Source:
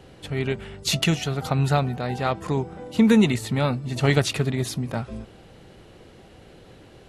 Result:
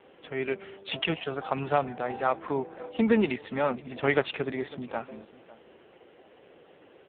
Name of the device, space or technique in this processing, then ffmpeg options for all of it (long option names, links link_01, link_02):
satellite phone: -af "highpass=340,lowpass=3400,aecho=1:1:550:0.0944" -ar 8000 -c:a libopencore_amrnb -b:a 5900